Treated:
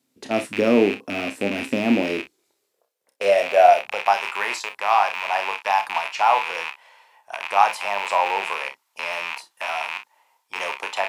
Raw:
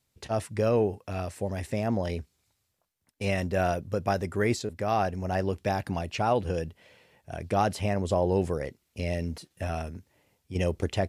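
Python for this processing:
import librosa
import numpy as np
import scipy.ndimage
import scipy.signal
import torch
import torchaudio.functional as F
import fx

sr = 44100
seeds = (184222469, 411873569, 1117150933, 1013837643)

y = fx.rattle_buzz(x, sr, strikes_db=-37.0, level_db=-19.0)
y = fx.room_early_taps(y, sr, ms=(30, 45, 60), db=(-9.0, -14.5, -16.0))
y = fx.filter_sweep_highpass(y, sr, from_hz=260.0, to_hz=940.0, start_s=1.85, end_s=4.22, q=5.2)
y = y * 10.0 ** (2.5 / 20.0)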